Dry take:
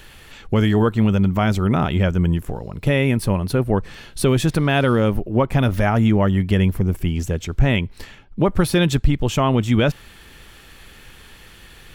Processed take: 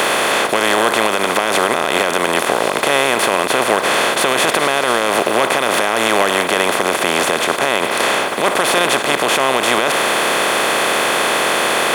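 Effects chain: per-bin compression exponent 0.2; HPF 560 Hz 12 dB/oct; limiter -4.5 dBFS, peak gain reduction 8 dB; gain +2.5 dB

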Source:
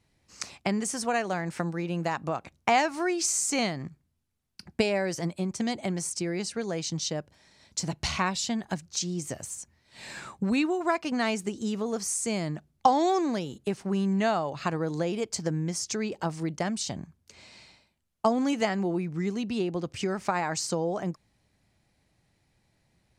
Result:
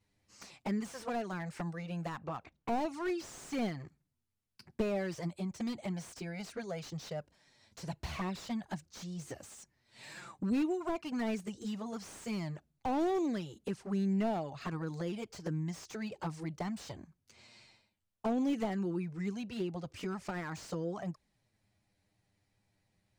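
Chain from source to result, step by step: 2.18–3.2 low-pass opened by the level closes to 2800 Hz, open at -20 dBFS; envelope flanger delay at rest 10.2 ms, full sweep at -22 dBFS; slew limiter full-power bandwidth 32 Hz; gain -4.5 dB

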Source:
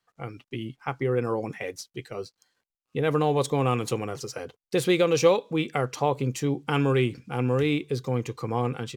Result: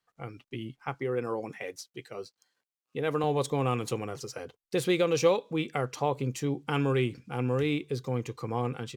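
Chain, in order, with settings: 0.94–3.24 HPF 200 Hz 6 dB/oct; gain -4 dB

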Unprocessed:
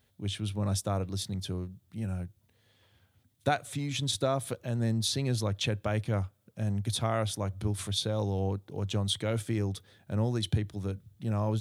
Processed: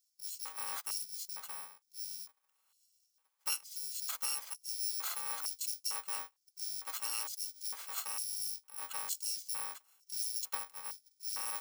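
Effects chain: FFT order left unsorted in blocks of 128 samples; LFO high-pass square 1.1 Hz 990–5200 Hz; gain -8 dB

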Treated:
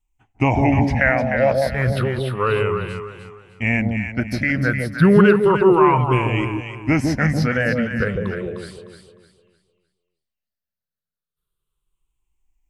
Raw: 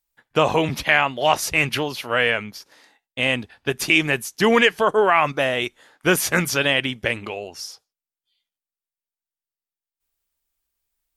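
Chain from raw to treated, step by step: moving spectral ripple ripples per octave 0.66, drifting -0.37 Hz, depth 15 dB; tone controls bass +14 dB, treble -7 dB; varispeed -12%; dynamic EQ 5000 Hz, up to -5 dB, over -34 dBFS, Q 0.84; on a send: echo with dull and thin repeats by turns 0.152 s, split 810 Hz, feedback 57%, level -2.5 dB; on the sum: gain -4 dB

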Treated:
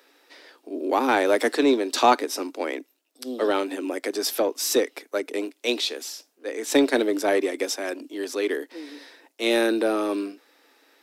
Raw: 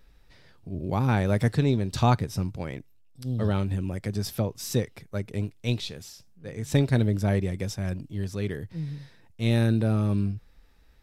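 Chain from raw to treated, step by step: steep high-pass 270 Hz 72 dB/oct; in parallel at -5 dB: soft clip -27 dBFS, distortion -10 dB; on the sum: gain +6 dB

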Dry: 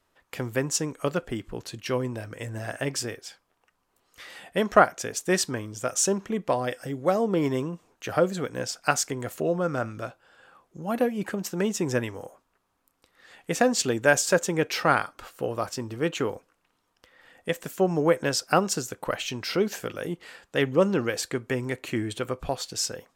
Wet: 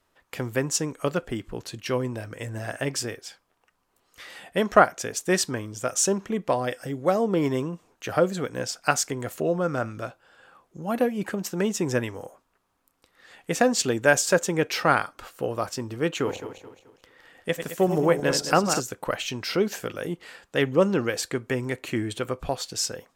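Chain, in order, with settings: 16.15–18.8 regenerating reverse delay 0.108 s, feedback 59%, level -8 dB; gain +1 dB

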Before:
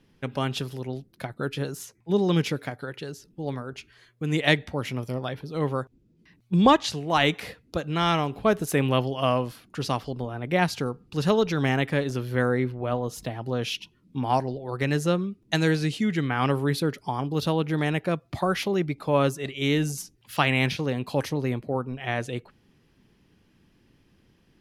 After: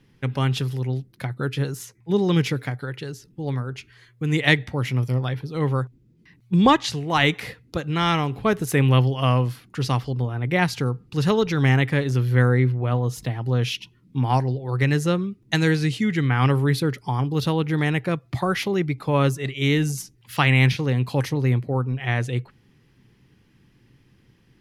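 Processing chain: thirty-one-band EQ 125 Hz +10 dB, 630 Hz -6 dB, 2000 Hz +4 dB; gain +2 dB

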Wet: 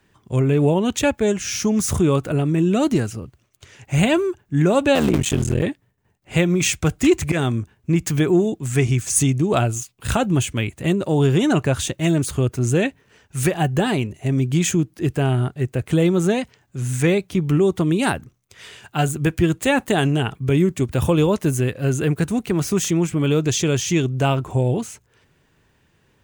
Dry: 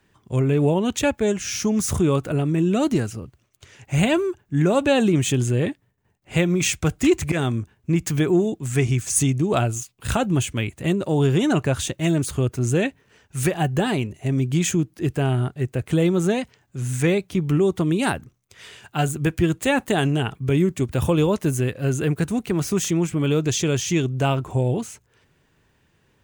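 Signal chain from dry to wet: 4.95–5.63 cycle switcher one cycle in 3, muted; gain +2 dB

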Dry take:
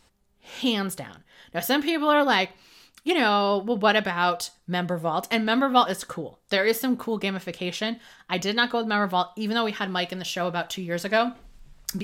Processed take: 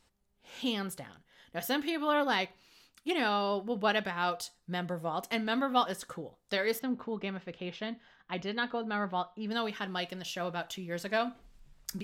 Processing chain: 6.79–9.51 air absorption 210 m; gain -8.5 dB

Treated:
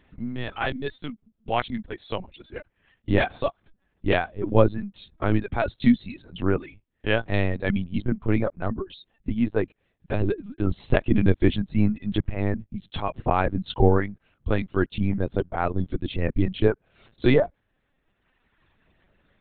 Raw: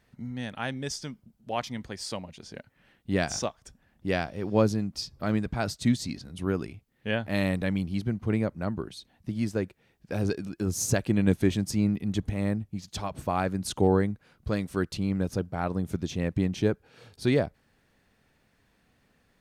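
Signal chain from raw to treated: reverb removal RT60 1.5 s; LPC vocoder at 8 kHz pitch kept; gain +6.5 dB

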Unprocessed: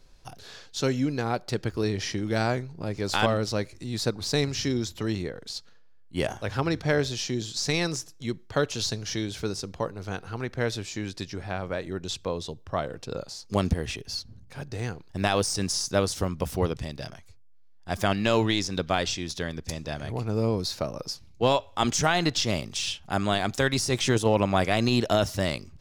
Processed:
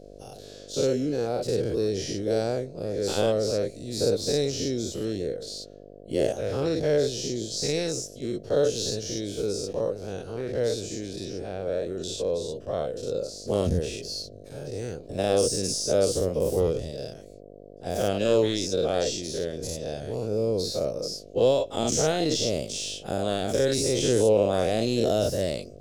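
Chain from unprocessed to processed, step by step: spectral dilation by 0.12 s; buzz 50 Hz, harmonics 14, -44 dBFS -1 dB/oct; ten-band EQ 500 Hz +12 dB, 1000 Hz -11 dB, 2000 Hz -7 dB, 8000 Hz +4 dB; gain -7.5 dB

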